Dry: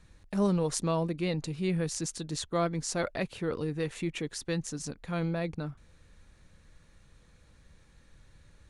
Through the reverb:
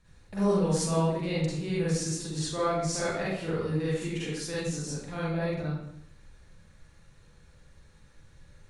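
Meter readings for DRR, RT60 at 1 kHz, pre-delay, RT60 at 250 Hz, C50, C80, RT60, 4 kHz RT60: -9.0 dB, 0.70 s, 39 ms, 0.85 s, -3.0 dB, 2.0 dB, 0.70 s, 0.60 s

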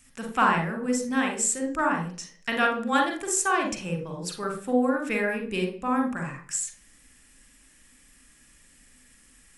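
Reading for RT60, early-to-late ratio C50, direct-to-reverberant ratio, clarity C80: 0.40 s, 7.5 dB, 3.5 dB, 13.0 dB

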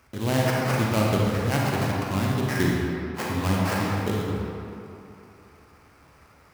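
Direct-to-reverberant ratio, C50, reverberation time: -3.5 dB, -2.5 dB, 2.9 s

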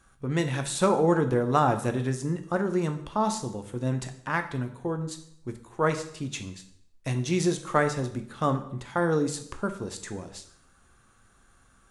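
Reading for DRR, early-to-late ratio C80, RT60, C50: 6.5 dB, 14.5 dB, 0.70 s, 11.5 dB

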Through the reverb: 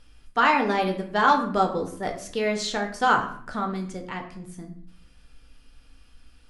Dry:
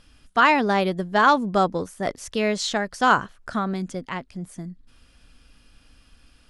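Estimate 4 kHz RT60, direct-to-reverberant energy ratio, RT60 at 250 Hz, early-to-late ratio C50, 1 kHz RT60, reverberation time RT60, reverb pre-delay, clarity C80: 0.40 s, 2.5 dB, 0.85 s, 9.0 dB, 0.55 s, 0.55 s, 4 ms, 12.5 dB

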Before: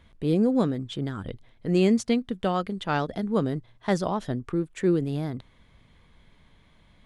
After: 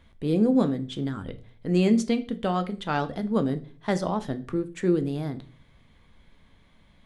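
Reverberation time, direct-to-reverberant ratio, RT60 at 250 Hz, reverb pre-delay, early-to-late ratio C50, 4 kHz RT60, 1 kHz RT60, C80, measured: 0.45 s, 9.5 dB, 0.55 s, 3 ms, 16.5 dB, 0.35 s, 0.35 s, 22.0 dB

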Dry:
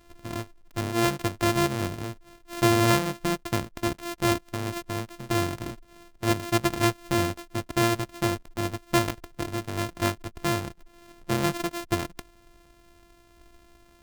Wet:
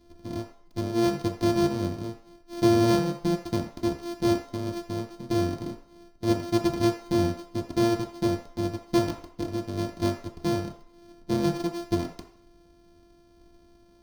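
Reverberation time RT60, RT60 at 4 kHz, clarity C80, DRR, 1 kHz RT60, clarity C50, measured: 0.55 s, 0.60 s, 11.5 dB, -0.5 dB, 0.55 s, 8.0 dB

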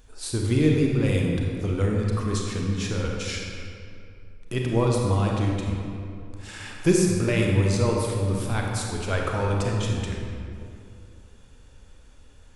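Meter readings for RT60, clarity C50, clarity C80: 2.6 s, 0.5 dB, 1.5 dB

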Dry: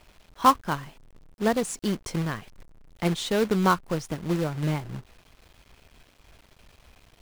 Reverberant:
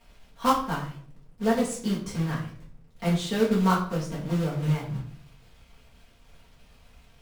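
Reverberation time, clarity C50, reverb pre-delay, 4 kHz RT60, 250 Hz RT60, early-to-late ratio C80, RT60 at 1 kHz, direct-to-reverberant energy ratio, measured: 0.55 s, 6.5 dB, 4 ms, 0.40 s, 0.75 s, 11.0 dB, 0.50 s, -6.5 dB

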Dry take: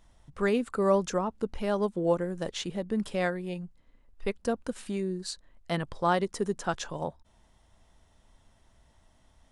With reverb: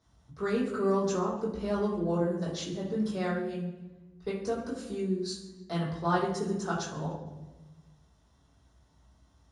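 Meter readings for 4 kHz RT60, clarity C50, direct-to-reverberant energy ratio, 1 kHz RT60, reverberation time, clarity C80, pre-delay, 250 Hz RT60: 0.80 s, 4.0 dB, -8.0 dB, 0.95 s, 1.1 s, 7.0 dB, 3 ms, 1.6 s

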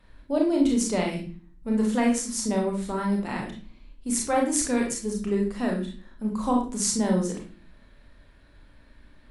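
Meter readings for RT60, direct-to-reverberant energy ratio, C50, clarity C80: 0.40 s, -0.5 dB, 5.0 dB, 11.0 dB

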